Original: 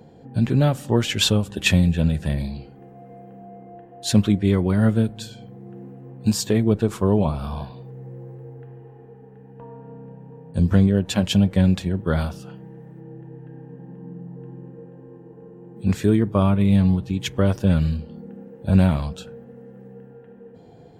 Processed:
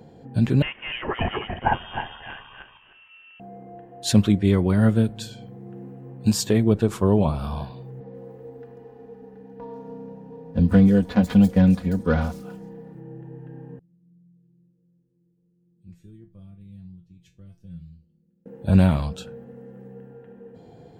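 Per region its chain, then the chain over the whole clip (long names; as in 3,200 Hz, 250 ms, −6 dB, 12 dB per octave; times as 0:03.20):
0:00.62–0:03.40: feedback delay that plays each chunk backwards 154 ms, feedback 42%, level −1.5 dB + high-pass filter 1,100 Hz + voice inversion scrambler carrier 3,400 Hz
0:08.00–0:12.95: running median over 15 samples + comb filter 4.1 ms, depth 74% + multiband delay without the direct sound lows, highs 140 ms, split 5,100 Hz
0:13.79–0:18.46: guitar amp tone stack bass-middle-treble 10-0-1 + tuned comb filter 170 Hz, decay 0.24 s, mix 90%
whole clip: no processing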